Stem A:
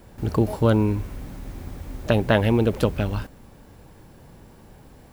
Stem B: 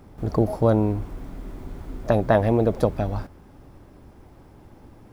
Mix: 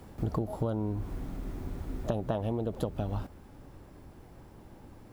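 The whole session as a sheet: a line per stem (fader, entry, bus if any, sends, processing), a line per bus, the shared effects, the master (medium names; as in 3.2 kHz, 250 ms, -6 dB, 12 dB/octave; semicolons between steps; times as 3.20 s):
-3.0 dB, 0.00 s, no send, auto duck -8 dB, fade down 0.30 s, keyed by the second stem
-4.0 dB, 0.00 s, no send, none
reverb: none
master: compression 16:1, threshold -27 dBFS, peak gain reduction 13 dB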